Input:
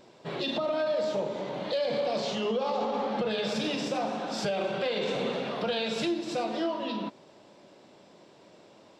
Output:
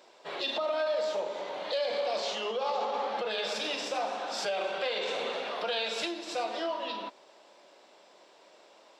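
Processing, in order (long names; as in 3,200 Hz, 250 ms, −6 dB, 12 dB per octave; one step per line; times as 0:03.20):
high-pass filter 570 Hz 12 dB per octave
level +1 dB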